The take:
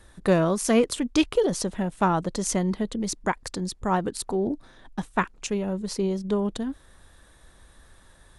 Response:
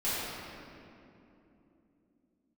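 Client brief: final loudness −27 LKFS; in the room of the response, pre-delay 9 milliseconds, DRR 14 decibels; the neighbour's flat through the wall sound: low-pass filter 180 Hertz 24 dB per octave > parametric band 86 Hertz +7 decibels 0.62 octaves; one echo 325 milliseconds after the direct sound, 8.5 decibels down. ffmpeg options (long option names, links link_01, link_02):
-filter_complex "[0:a]aecho=1:1:325:0.376,asplit=2[link_01][link_02];[1:a]atrim=start_sample=2205,adelay=9[link_03];[link_02][link_03]afir=irnorm=-1:irlink=0,volume=-23.5dB[link_04];[link_01][link_04]amix=inputs=2:normalize=0,lowpass=frequency=180:width=0.5412,lowpass=frequency=180:width=1.3066,equalizer=frequency=86:width_type=o:width=0.62:gain=7,volume=7.5dB"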